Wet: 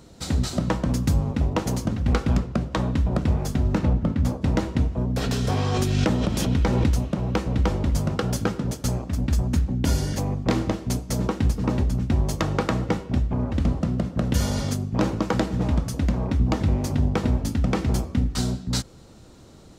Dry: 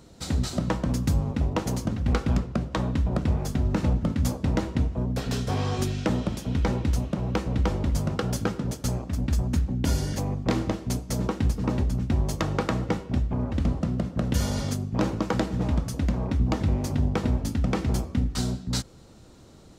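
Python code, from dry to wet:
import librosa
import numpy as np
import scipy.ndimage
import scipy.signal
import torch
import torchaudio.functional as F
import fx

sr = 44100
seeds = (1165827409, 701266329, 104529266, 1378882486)

y = fx.high_shelf(x, sr, hz=fx.line((3.77, 4900.0), (4.41, 3100.0)), db=-11.5, at=(3.77, 4.41), fade=0.02)
y = fx.pre_swell(y, sr, db_per_s=21.0, at=(5.13, 7.07))
y = y * librosa.db_to_amplitude(2.5)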